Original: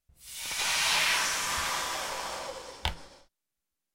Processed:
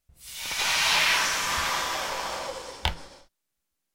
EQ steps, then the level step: dynamic EQ 9200 Hz, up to -6 dB, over -49 dBFS, Q 1.3; +4.5 dB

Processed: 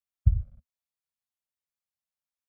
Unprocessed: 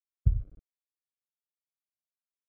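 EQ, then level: Chebyshev band-stop 240–520 Hz, order 4; bell 75 Hz +6.5 dB 0.91 oct; 0.0 dB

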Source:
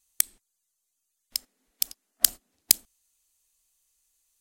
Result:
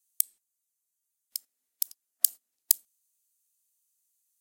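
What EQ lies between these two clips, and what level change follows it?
RIAA curve recording; -17.0 dB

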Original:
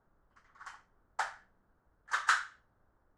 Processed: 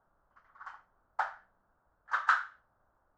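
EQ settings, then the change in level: LPF 4000 Hz 12 dB/oct; band shelf 930 Hz +8 dB; -5.0 dB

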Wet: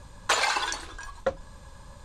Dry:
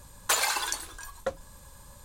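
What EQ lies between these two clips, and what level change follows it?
air absorption 100 m; +4.5 dB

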